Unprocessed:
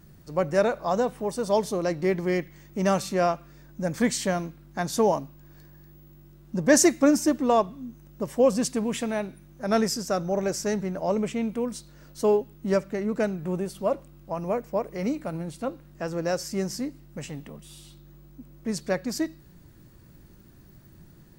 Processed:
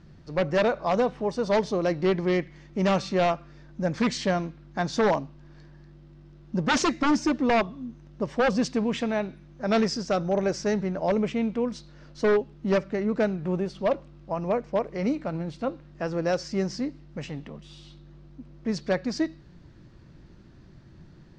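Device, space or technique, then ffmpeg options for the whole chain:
synthesiser wavefolder: -af "aeval=exprs='0.133*(abs(mod(val(0)/0.133+3,4)-2)-1)':c=same,lowpass=f=5.3k:w=0.5412,lowpass=f=5.3k:w=1.3066,volume=1.5dB"

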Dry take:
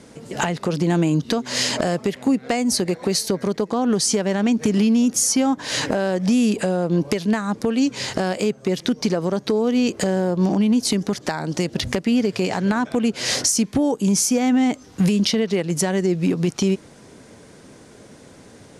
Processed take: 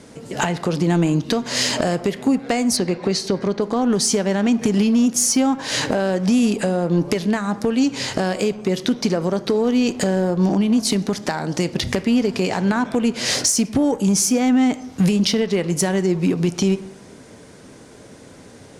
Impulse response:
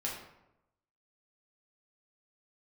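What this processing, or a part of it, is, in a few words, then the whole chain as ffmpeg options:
saturated reverb return: -filter_complex "[0:a]asplit=2[a][b];[1:a]atrim=start_sample=2205[c];[b][c]afir=irnorm=-1:irlink=0,asoftclip=type=tanh:threshold=-17.5dB,volume=-10.5dB[d];[a][d]amix=inputs=2:normalize=0,asplit=3[e][f][g];[e]afade=t=out:st=2.76:d=0.02[h];[f]lowpass=5.4k,afade=t=in:st=2.76:d=0.02,afade=t=out:st=3.6:d=0.02[i];[g]afade=t=in:st=3.6:d=0.02[j];[h][i][j]amix=inputs=3:normalize=0"

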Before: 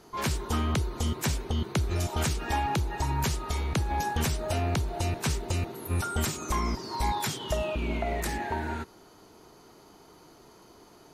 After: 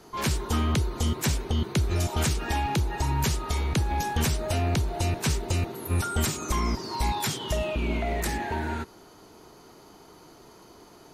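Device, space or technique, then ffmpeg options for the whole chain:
one-band saturation: -filter_complex "[0:a]acrossover=split=400|2000[a][b][c];[b]asoftclip=type=tanh:threshold=-31dB[d];[a][d][c]amix=inputs=3:normalize=0,volume=3dB"

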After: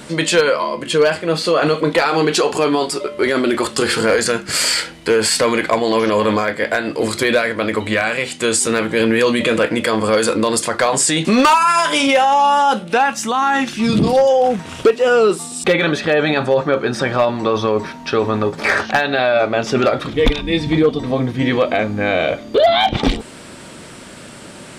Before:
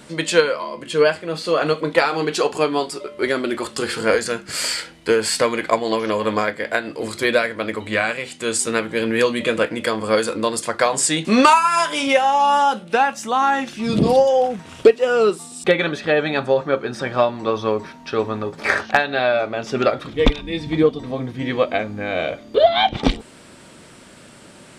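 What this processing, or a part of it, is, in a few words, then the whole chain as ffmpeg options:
clipper into limiter: -filter_complex "[0:a]asoftclip=type=hard:threshold=-8dB,alimiter=limit=-14.5dB:level=0:latency=1:release=23,asettb=1/sr,asplit=3[a][b][c];[a]atrim=end=13.064[d];[b]atrim=start=13.06:end=14.13,asetpts=PTS-STARTPTS,afade=t=in:d=0.004:c=qsin,afade=t=out:st=1.066:d=0.004:c=qsin,equalizer=f=580:w=1.6:g=-5.5[e];[c]atrim=start=14.126[f];[d][e]acrossfade=d=0.004:c1=hsin:c2=qsin[g];[g][f]acrossfade=d=0.004:c1=qsin:c2=hsin,volume=8dB"

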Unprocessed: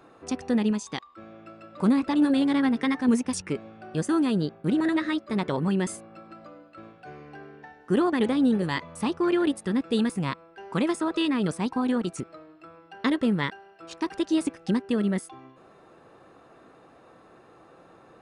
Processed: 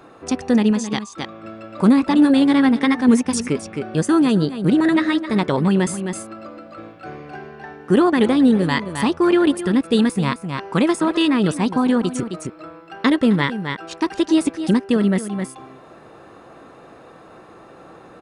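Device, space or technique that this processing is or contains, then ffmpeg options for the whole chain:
ducked delay: -filter_complex "[0:a]asplit=3[a][b][c];[b]adelay=263,volume=-3dB[d];[c]apad=whole_len=814891[e];[d][e]sidechaincompress=threshold=-35dB:ratio=8:attack=16:release=338[f];[a][f]amix=inputs=2:normalize=0,volume=8dB"

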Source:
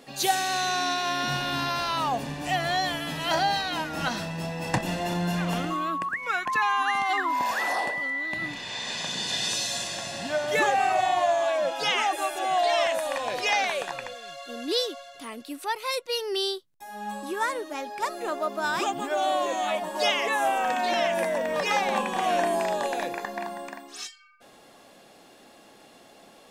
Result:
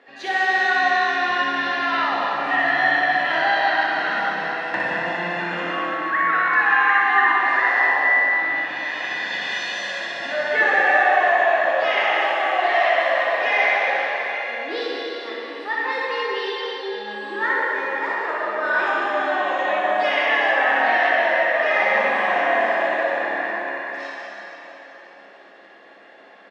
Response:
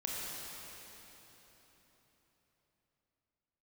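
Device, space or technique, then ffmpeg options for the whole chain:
station announcement: -filter_complex "[0:a]asettb=1/sr,asplit=3[a][b][c];[a]atrim=end=20.964[d];[b]atrim=start=20.96:end=21.61,asetpts=PTS-STARTPTS,afade=t=in:d=0.004:c=qsin,afade=t=out:st=0.646:d=0.004:c=qsin,highpass=300[e];[c]atrim=start=21.606[f];[d][e]acrossfade=d=0.004:c1=hsin:c2=qsin[g];[g][f]acrossfade=d=0.004:c1=qsin:c2=hsin,highpass=380,lowpass=3.5k,equalizer=f=1.8k:t=o:w=0.46:g=11.5,highshelf=f=5.6k:g=-12,aecho=1:1:61.22|189.5:0.631|0.355[h];[1:a]atrim=start_sample=2205[i];[h][i]afir=irnorm=-1:irlink=0,asplit=2[j][k];[k]adelay=15,volume=-10.5dB[l];[j][l]amix=inputs=2:normalize=0"

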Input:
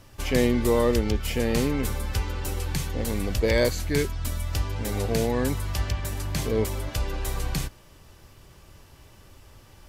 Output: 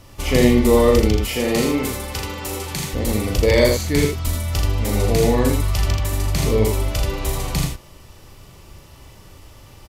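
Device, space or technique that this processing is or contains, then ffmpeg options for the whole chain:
slapback doubling: -filter_complex "[0:a]bandreject=f=1.6k:w=7.6,asettb=1/sr,asplit=3[a][b][c];[a]atrim=end=1.194[d];[b]atrim=start=1.19:end=2.93,asetpts=PTS-STARTPTS,afade=t=in:d=0.004:c=qsin,afade=t=out:st=1.736:d=0.004:c=qsin,highpass=f=240:p=1[e];[c]atrim=start=2.926[f];[d][e]acrossfade=d=0.004:c1=hsin:c2=qsin[g];[g][f]acrossfade=d=0.004:c1=qsin:c2=hsin,asplit=3[h][i][j];[i]adelay=38,volume=-5dB[k];[j]adelay=82,volume=-4dB[l];[h][k][l]amix=inputs=3:normalize=0,volume=5dB"

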